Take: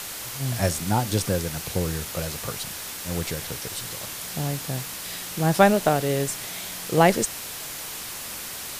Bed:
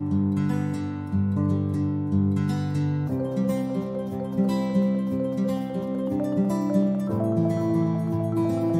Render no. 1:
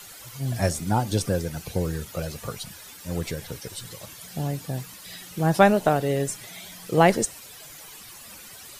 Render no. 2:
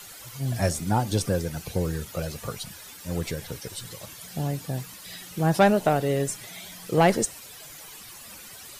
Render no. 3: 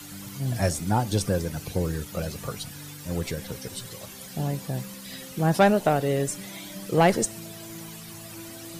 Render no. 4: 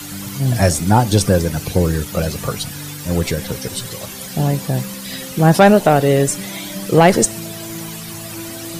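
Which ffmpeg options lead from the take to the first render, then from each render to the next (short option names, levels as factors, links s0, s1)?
-af "afftdn=nr=13:nf=-35"
-af "asoftclip=type=tanh:threshold=0.335"
-filter_complex "[1:a]volume=0.106[s0];[0:a][s0]amix=inputs=2:normalize=0"
-af "volume=3.55,alimiter=limit=0.794:level=0:latency=1"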